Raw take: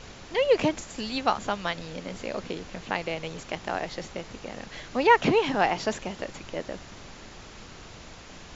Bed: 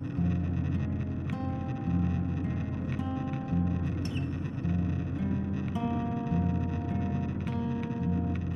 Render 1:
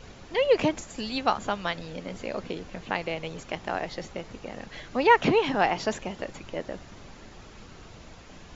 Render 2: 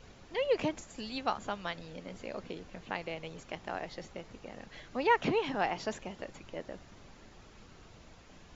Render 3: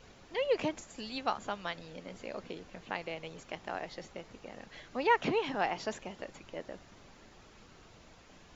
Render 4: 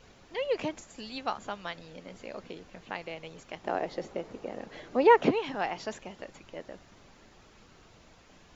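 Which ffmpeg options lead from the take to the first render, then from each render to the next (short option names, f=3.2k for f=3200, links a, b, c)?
-af "afftdn=nr=6:nf=-46"
-af "volume=-8dB"
-af "lowshelf=f=180:g=-5"
-filter_complex "[0:a]asettb=1/sr,asplit=3[a][b][c];[a]atrim=end=3.644[d];[b]atrim=start=3.64:end=5.31,asetpts=PTS-STARTPTS,afade=t=in:d=0.004:c=qsin,afade=t=out:st=1.666:d=0.004:c=qsin,equalizer=f=410:w=0.5:g=11[e];[c]atrim=start=5.306[f];[d][e]acrossfade=d=0.004:c1=hsin:c2=qsin[g];[g][f]acrossfade=d=0.004:c1=qsin:c2=hsin"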